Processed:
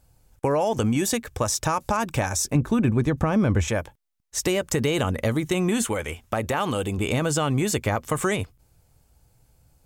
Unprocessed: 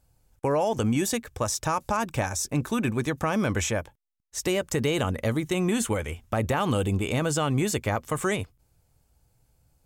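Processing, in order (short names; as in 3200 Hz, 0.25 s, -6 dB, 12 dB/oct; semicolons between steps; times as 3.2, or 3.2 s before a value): 2.55–3.68 tilt -2.5 dB/oct; compressor 2:1, threshold -27 dBFS, peak gain reduction 7 dB; 5.84–6.98 low shelf 230 Hz -7.5 dB; gain +5.5 dB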